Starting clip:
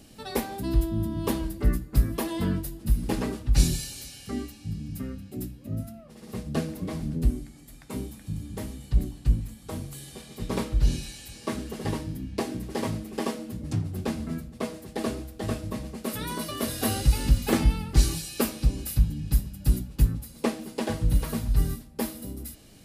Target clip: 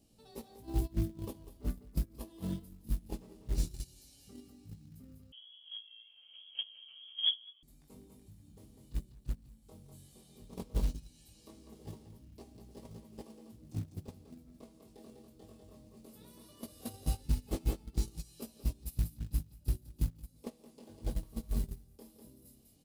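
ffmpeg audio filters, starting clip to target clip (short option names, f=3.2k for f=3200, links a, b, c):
-filter_complex "[0:a]acompressor=threshold=-39dB:ratio=3,flanger=delay=17.5:depth=5.1:speed=0.16,aecho=1:1:49|166|198:0.224|0.158|0.562,agate=range=-19dB:threshold=-36dB:ratio=16:detection=peak,equalizer=f=1.7k:t=o:w=1.2:g=-12,acrusher=bits=6:mode=log:mix=0:aa=0.000001,asettb=1/sr,asplit=3[a][b][c];[a]atrim=end=5.324[d];[b]atrim=start=5.32:end=7.63,asetpts=PTS-STARTPTS,afade=t=in:d=0.004:c=qsin,afade=t=out:st=2.306:d=0.004:c=qsin,lowpass=f=2.9k:t=q:w=0.5098,lowpass=f=2.9k:t=q:w=0.6013,lowpass=f=2.9k:t=q:w=0.9,lowpass=f=2.9k:t=q:w=2.563,afreqshift=-3400[e];[c]atrim=start=7.626[f];[d][e]acrossfade=d=0.004:c1=hsin:c2=qsin[g];[g][f]acrossfade=d=0.004:c1=qsin:c2=hsin,volume=6.5dB"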